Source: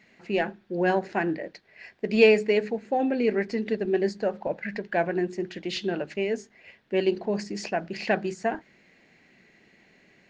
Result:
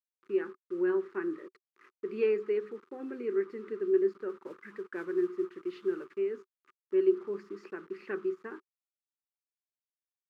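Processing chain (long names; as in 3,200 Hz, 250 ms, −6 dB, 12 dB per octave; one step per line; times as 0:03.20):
bit reduction 7 bits
0:04.29–0:06.18: noise that follows the level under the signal 14 dB
pair of resonant band-passes 680 Hz, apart 1.7 octaves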